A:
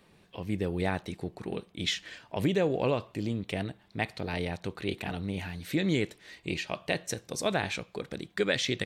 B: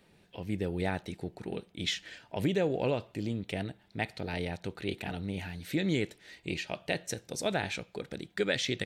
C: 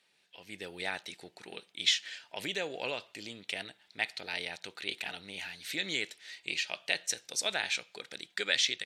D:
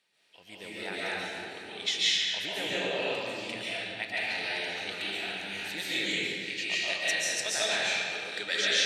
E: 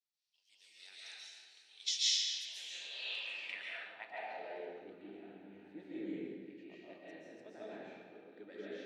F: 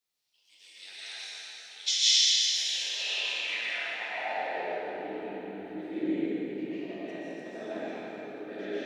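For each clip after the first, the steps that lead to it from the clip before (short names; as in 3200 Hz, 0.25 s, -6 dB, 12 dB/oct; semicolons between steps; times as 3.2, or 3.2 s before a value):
notch 1100 Hz, Q 5.6; gain -2 dB
AGC gain up to 7 dB; band-pass 4800 Hz, Q 0.58
reverb RT60 2.3 s, pre-delay 0.1 s, DRR -9 dB; gain -4 dB
band-pass sweep 5500 Hz -> 290 Hz, 2.81–4.99; three-band expander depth 40%; gain -2 dB
plate-style reverb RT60 4.2 s, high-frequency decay 0.65×, DRR -4.5 dB; gain +6.5 dB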